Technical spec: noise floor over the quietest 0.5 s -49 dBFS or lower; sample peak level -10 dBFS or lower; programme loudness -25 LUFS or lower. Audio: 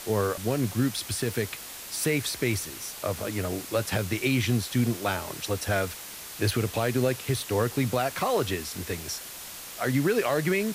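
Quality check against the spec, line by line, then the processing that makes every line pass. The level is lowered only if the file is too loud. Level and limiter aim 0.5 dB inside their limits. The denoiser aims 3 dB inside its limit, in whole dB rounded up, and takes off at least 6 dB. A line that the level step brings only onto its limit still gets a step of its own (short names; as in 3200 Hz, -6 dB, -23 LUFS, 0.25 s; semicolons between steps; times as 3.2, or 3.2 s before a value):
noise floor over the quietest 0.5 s -41 dBFS: fail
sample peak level -13.5 dBFS: OK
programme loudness -28.0 LUFS: OK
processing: denoiser 11 dB, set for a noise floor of -41 dBFS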